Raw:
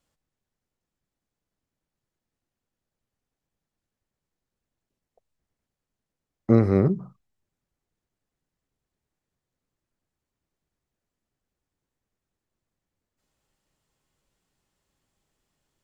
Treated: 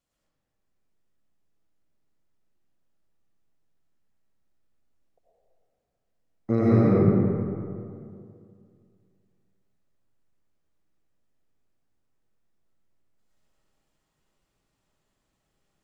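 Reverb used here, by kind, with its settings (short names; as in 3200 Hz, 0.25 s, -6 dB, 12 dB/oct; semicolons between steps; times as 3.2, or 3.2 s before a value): digital reverb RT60 2.4 s, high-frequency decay 0.5×, pre-delay 55 ms, DRR -8 dB; gain -7 dB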